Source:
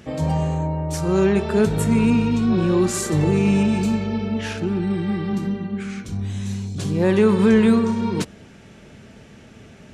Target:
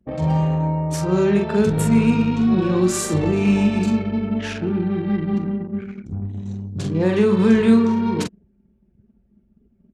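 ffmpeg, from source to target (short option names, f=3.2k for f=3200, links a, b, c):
-filter_complex "[0:a]highpass=50,asplit=2[a][b];[b]adelay=44,volume=-4.5dB[c];[a][c]amix=inputs=2:normalize=0,acrossover=split=350|3000[d][e][f];[e]acompressor=threshold=-20dB:ratio=6[g];[d][g][f]amix=inputs=3:normalize=0,anlmdn=39.8"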